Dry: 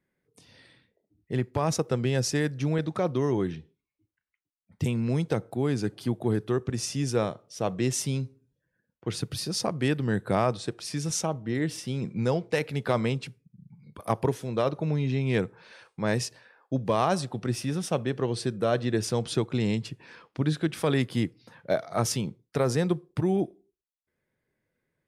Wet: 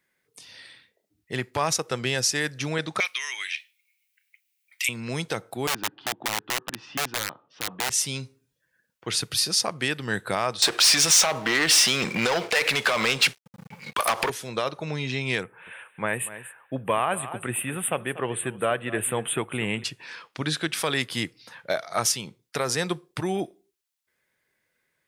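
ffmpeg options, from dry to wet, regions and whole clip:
-filter_complex "[0:a]asettb=1/sr,asplit=3[a][b][c];[a]atrim=end=3.004[d];[b]atrim=start=3:end=4.89,asetpts=PTS-STARTPTS,afade=t=in:d=0.004:c=qsin,afade=t=out:st=1.886:d=0.004:c=qsin,deesser=0.35,highpass=f=2.3k:t=q:w=5,highshelf=f=8.7k:g=12[e];[c]atrim=start=4.886[f];[d][e]acrossfade=d=0.004:c1=hsin:c2=qsin[g];[g][f]acrossfade=d=0.004:c1=qsin:c2=hsin,asettb=1/sr,asplit=3[h][i][j];[h]atrim=end=5.674[k];[i]atrim=start=5.67:end=7.9,asetpts=PTS-STARTPTS,afade=t=in:d=0.004:c=qsin,afade=t=out:st=2.226:d=0.004:c=qsin,highpass=140,equalizer=f=150:t=q:w=4:g=3,equalizer=f=290:t=q:w=4:g=8,equalizer=f=430:t=q:w=4:g=-4,equalizer=f=620:t=q:w=4:g=-6,equalizer=f=900:t=q:w=4:g=7,equalizer=f=2.2k:t=q:w=4:g=-10,lowpass=f=2.7k:w=0.5412,lowpass=f=2.7k:w=1.3066,aeval=exprs='(mod(10*val(0)+1,2)-1)/10':c=same[l];[j]atrim=start=7.896[m];[k][l]acrossfade=d=0.004:c1=hsin:c2=qsin[n];[n][m]acrossfade=d=0.004:c1=qsin:c2=hsin,asettb=1/sr,asplit=3[o][p][q];[o]atrim=end=10.624[r];[p]atrim=start=10.62:end=14.3,asetpts=PTS-STARTPTS,afade=t=in:d=0.004:c=qsin,afade=t=out:st=3.676:d=0.004:c=qsin,acompressor=threshold=-30dB:ratio=6:attack=3.2:release=140:knee=1:detection=peak,asplit=2[s][t];[t]highpass=f=720:p=1,volume=31dB,asoftclip=type=tanh:threshold=-13dB[u];[s][u]amix=inputs=2:normalize=0,lowpass=f=5.2k:p=1,volume=-6dB,aeval=exprs='sgn(val(0))*max(abs(val(0))-0.00473,0)':c=same[v];[q]atrim=start=14.296[w];[r][v]acrossfade=d=0.004:c1=hsin:c2=qsin[x];[x][w]acrossfade=d=0.004:c1=qsin:c2=hsin,asettb=1/sr,asplit=3[y][z][aa];[y]atrim=end=15.434[ab];[z]atrim=start=15.43:end=19.84,asetpts=PTS-STARTPTS,afade=t=in:d=0.004:c=qsin,afade=t=out:st=4.406:d=0.004:c=qsin,asuperstop=centerf=5300:order=8:qfactor=0.92,equalizer=f=8.8k:t=o:w=0.96:g=4,aecho=1:1:239:0.158,atrim=end_sample=194481[ac];[aa]atrim=start=19.836[ad];[ab][ac]acrossfade=d=0.004:c1=hsin:c2=qsin[ae];[ae][ad]acrossfade=d=0.004:c1=qsin:c2=hsin,tiltshelf=f=700:g=-9,alimiter=limit=-14.5dB:level=0:latency=1:release=334,volume=3dB"

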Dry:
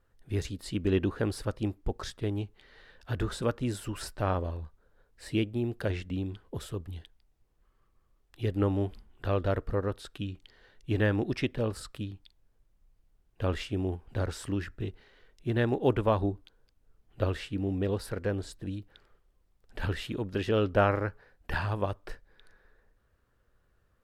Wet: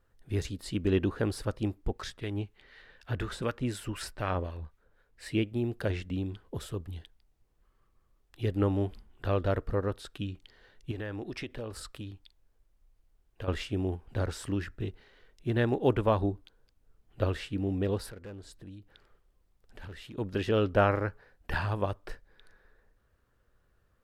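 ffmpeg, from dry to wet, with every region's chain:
-filter_complex "[0:a]asettb=1/sr,asplit=3[a][b][c];[a]atrim=end=1.894[d];[b]atrim=start=1.89:end=5.52,asetpts=PTS-STARTPTS,afade=t=in:d=0.004:c=qsin,afade=t=out:st=3.626:d=0.004:c=qsin,equalizer=f=2.2k:t=o:w=1.2:g=5.5,acrossover=split=1200[e][f];[e]aeval=exprs='val(0)*(1-0.5/2+0.5/2*cos(2*PI*4*n/s))':c=same[g];[f]aeval=exprs='val(0)*(1-0.5/2-0.5/2*cos(2*PI*4*n/s))':c=same[h];[g][h]amix=inputs=2:normalize=0[i];[c]atrim=start=5.516[j];[d][i]acrossfade=d=0.004:c1=hsin:c2=qsin[k];[k][j]acrossfade=d=0.004:c1=qsin:c2=hsin,asettb=1/sr,asplit=3[l][m][n];[l]atrim=end=10.914[o];[m]atrim=start=10.91:end=13.48,asetpts=PTS-STARTPTS,afade=t=in:d=0.004:c=qsin,afade=t=out:st=2.566:d=0.004:c=qsin,equalizer=f=160:w=1.2:g=-6,acompressor=threshold=-35dB:ratio=4:attack=3.2:release=140:knee=1:detection=peak[p];[n]atrim=start=13.476[q];[o][p]acrossfade=d=0.004:c1=hsin:c2=qsin[r];[r][q]acrossfade=d=0.004:c1=qsin:c2=hsin,asettb=1/sr,asplit=3[s][t][u];[s]atrim=end=18.104[v];[t]atrim=start=18.1:end=20.18,asetpts=PTS-STARTPTS,afade=t=in:d=0.004:c=qsin,afade=t=out:st=2.076:d=0.004:c=qsin,volume=27.5dB,asoftclip=hard,volume=-27.5dB,acompressor=threshold=-51dB:ratio=2:attack=3.2:release=140:knee=1:detection=peak[w];[u]atrim=start=20.176[x];[v][w]acrossfade=d=0.004:c1=hsin:c2=qsin[y];[y][x]acrossfade=d=0.004:c1=qsin:c2=hsin"

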